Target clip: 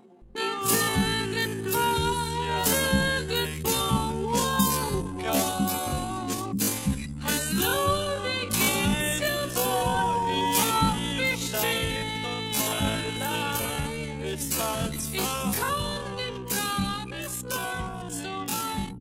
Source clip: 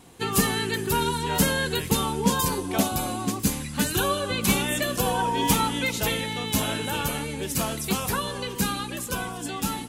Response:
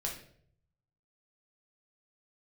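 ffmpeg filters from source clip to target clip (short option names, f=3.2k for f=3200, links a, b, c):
-filter_complex "[0:a]anlmdn=2.51,acrossover=split=250[a][b];[a]adelay=130[c];[c][b]amix=inputs=2:normalize=0,atempo=0.52,acompressor=mode=upward:threshold=-33dB:ratio=2.5"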